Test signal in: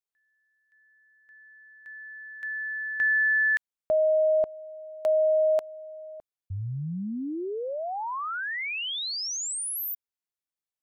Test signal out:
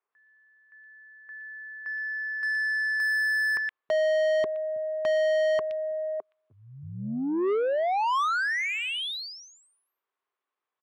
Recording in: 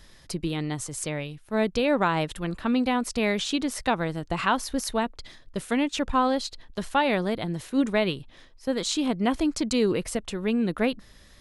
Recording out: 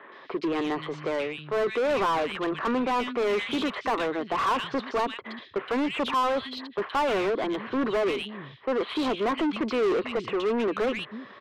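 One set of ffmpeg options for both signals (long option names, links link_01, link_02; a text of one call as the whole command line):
ffmpeg -i in.wav -filter_complex "[0:a]highpass=frequency=110:width=0.5412,highpass=frequency=110:width=1.3066,equalizer=frequency=170:width_type=q:width=4:gain=-10,equalizer=frequency=400:width_type=q:width=4:gain=8,equalizer=frequency=1100:width_type=q:width=4:gain=8,lowpass=frequency=3300:width=0.5412,lowpass=frequency=3300:width=1.3066,acrossover=split=160|2600[link_01][link_02][link_03];[link_03]adelay=120[link_04];[link_01]adelay=320[link_05];[link_05][link_02][link_04]amix=inputs=3:normalize=0,asplit=2[link_06][link_07];[link_07]highpass=frequency=720:poles=1,volume=28dB,asoftclip=type=tanh:threshold=-10.5dB[link_08];[link_06][link_08]amix=inputs=2:normalize=0,lowpass=frequency=2000:poles=1,volume=-6dB,volume=-7.5dB" out.wav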